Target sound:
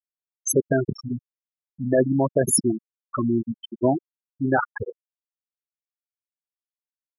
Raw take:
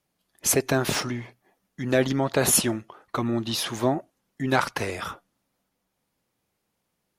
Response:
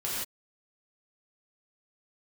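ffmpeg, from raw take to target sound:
-af "apsyclip=12dB,afftfilt=real='re*gte(hypot(re,im),0.891)':imag='im*gte(hypot(re,im),0.891)':win_size=1024:overlap=0.75,volume=-7.5dB"

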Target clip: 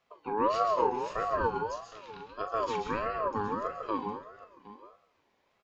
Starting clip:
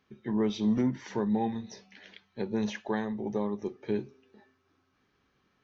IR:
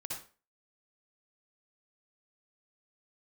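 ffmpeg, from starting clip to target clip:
-filter_complex "[0:a]aecho=1:1:765:0.141,asplit=2[a][b];[1:a]atrim=start_sample=2205,asetrate=29106,aresample=44100,adelay=41[c];[b][c]afir=irnorm=-1:irlink=0,volume=-6dB[d];[a][d]amix=inputs=2:normalize=0,aeval=exprs='val(0)*sin(2*PI*770*n/s+770*0.2/1.6*sin(2*PI*1.6*n/s))':c=same"

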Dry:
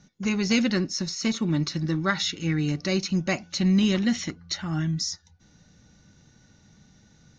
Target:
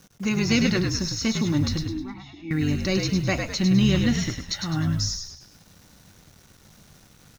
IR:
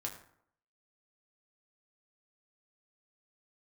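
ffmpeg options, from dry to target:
-filter_complex "[0:a]acrusher=bits=8:mix=0:aa=0.000001,asettb=1/sr,asplit=3[a][b][c];[a]atrim=end=1.824[d];[b]atrim=start=1.82:end=2.51,asetpts=PTS-STARTPTS,afade=t=in:d=0.004:c=qsin,afade=t=out:st=0.686:d=0.004:c=qsin,asplit=3[e][f][g];[e]bandpass=f=300:t=q:w=8,volume=0dB[h];[f]bandpass=f=870:t=q:w=8,volume=-6dB[i];[g]bandpass=f=2.24k:t=q:w=8,volume=-9dB[j];[h][i][j]amix=inputs=3:normalize=0[k];[c]atrim=start=2.506[l];[d][k]acrossfade=d=0.004:c1=hsin:c2=qsin[m];[m][l]acrossfade=d=0.004:c1=qsin:c2=hsin,asplit=6[n][o][p][q][r][s];[o]adelay=103,afreqshift=-58,volume=-5dB[t];[p]adelay=206,afreqshift=-116,volume=-12.5dB[u];[q]adelay=309,afreqshift=-174,volume=-20.1dB[v];[r]adelay=412,afreqshift=-232,volume=-27.6dB[w];[s]adelay=515,afreqshift=-290,volume=-35.1dB[x];[n][t][u][v][w][x]amix=inputs=6:normalize=0,asplit=2[y][z];[1:a]atrim=start_sample=2205[aa];[z][aa]afir=irnorm=-1:irlink=0,volume=-16.5dB[ab];[y][ab]amix=inputs=2:normalize=0"

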